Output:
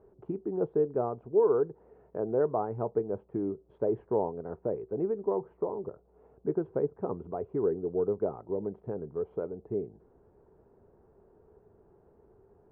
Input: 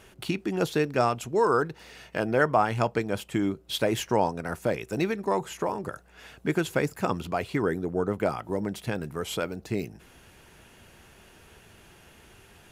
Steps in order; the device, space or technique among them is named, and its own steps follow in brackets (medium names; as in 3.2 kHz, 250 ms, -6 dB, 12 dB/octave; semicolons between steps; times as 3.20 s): under water (low-pass 1 kHz 24 dB/octave; peaking EQ 420 Hz +12 dB 0.46 oct); 5.54–6.36 s: peaking EQ 1.6 kHz -12 dB 0.25 oct; trim -9 dB